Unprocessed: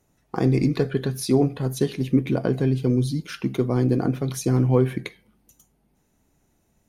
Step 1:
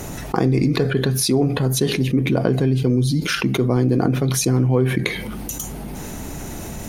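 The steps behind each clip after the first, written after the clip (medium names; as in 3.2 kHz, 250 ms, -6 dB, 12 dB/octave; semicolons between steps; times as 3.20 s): level flattener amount 70%; trim -1 dB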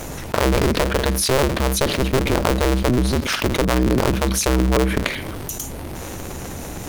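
cycle switcher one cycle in 2, inverted; dynamic bell 780 Hz, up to -5 dB, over -40 dBFS, Q 7.3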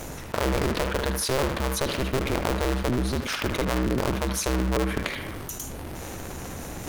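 reverse; upward compressor, threshold -23 dBFS; reverse; band-passed feedback delay 75 ms, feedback 60%, band-pass 1.4 kHz, level -5 dB; trim -7.5 dB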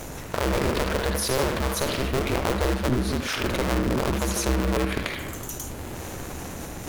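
ever faster or slower copies 149 ms, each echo +1 st, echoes 2, each echo -6 dB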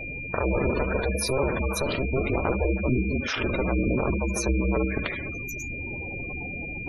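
whistle 2.4 kHz -34 dBFS; spectral gate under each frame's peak -15 dB strong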